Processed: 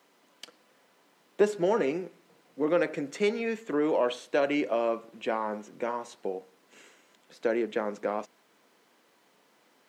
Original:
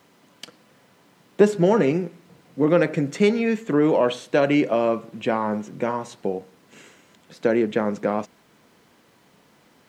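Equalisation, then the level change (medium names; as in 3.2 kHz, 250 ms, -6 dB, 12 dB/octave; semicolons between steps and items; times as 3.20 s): high-pass 310 Hz 12 dB/octave; -6.0 dB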